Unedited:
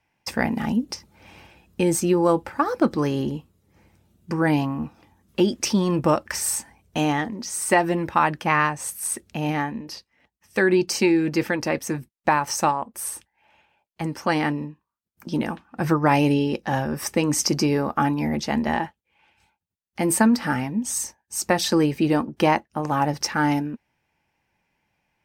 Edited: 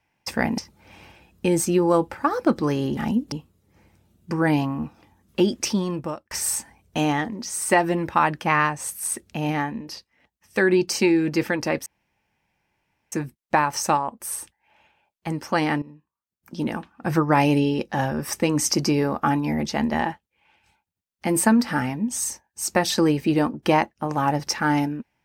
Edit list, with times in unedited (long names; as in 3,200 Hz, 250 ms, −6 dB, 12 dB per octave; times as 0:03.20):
0:00.58–0:00.93: move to 0:03.32
0:05.58–0:06.31: fade out
0:11.86: splice in room tone 1.26 s
0:14.56–0:16.00: fade in equal-power, from −16 dB